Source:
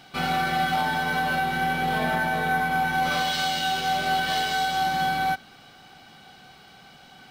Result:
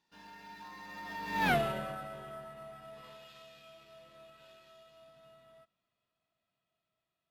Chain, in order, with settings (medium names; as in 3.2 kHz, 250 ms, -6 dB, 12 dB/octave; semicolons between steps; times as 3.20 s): Doppler pass-by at 1.50 s, 57 m/s, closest 3.2 m